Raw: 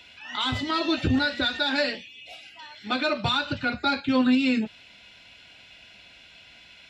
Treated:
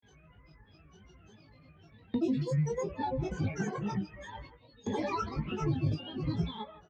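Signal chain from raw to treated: whole clip reversed; low-pass opened by the level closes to 2100 Hz, open at -19 dBFS; bell 1800 Hz -7 dB 2.7 oct; octave resonator G#, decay 0.12 s; gate with hold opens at -59 dBFS; grains, pitch spread up and down by 12 st; doubler 19 ms -4.5 dB; speakerphone echo 0.16 s, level -23 dB; on a send at -22 dB: reverb RT60 0.50 s, pre-delay 3 ms; on the sum: three-band squash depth 100%; gain +5 dB

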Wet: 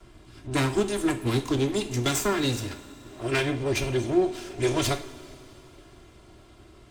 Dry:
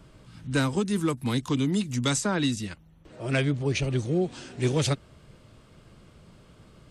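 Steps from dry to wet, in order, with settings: minimum comb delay 2.9 ms; two-slope reverb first 0.41 s, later 3.6 s, from -18 dB, DRR 5.5 dB; gain +1.5 dB

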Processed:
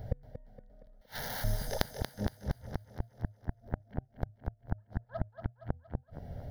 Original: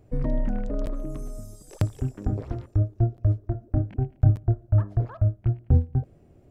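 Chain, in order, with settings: compressor 2.5:1, threshold -36 dBFS, peak gain reduction 15.5 dB; 1.01–1.44 wrapped overs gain 44.5 dB; fixed phaser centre 1700 Hz, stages 8; flipped gate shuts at -32 dBFS, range -35 dB; thinning echo 0.233 s, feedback 52%, high-pass 150 Hz, level -8 dB; gain +14 dB

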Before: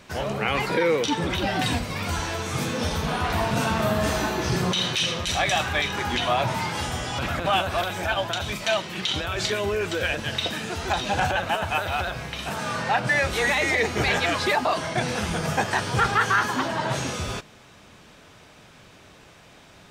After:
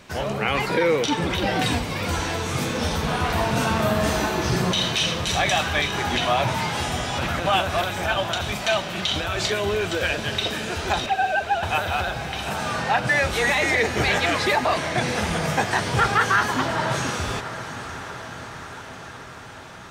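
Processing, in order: 11.06–11.63 sine-wave speech; diffused feedback echo 0.683 s, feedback 70%, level -12.5 dB; gain +1.5 dB

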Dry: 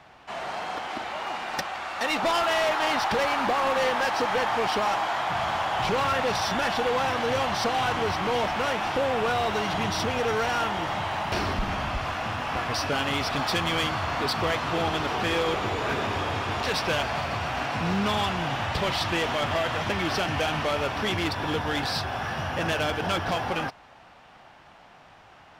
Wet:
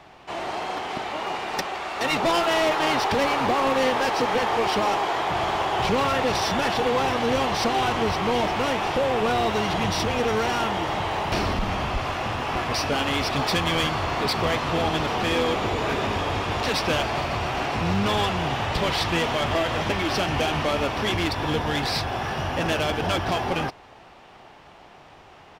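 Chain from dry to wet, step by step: bell 1500 Hz -4.5 dB 0.47 oct; in parallel at -12 dB: soft clip -29.5 dBFS, distortion -10 dB; on the sum: harmoniser -12 st -8 dB; gain +1.5 dB

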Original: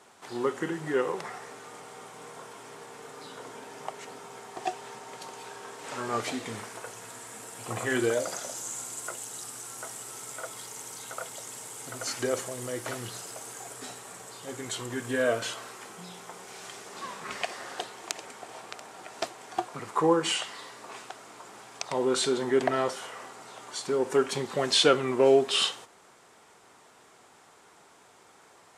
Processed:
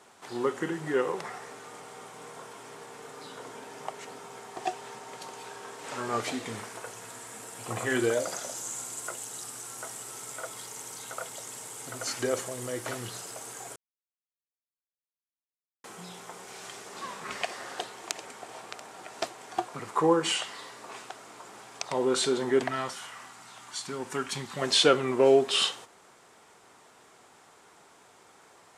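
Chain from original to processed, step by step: 13.76–15.84 mute; 22.63–24.62 bell 470 Hz -13 dB 1.2 oct

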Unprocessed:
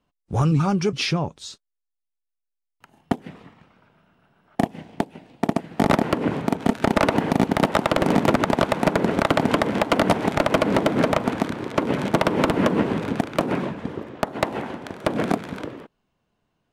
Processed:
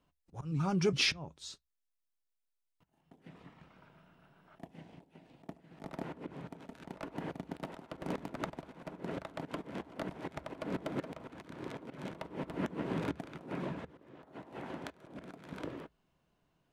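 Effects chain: auto swell 0.717 s; on a send: reverb RT60 0.10 s, pre-delay 3 ms, DRR 16.5 dB; on the sum: gain -3 dB

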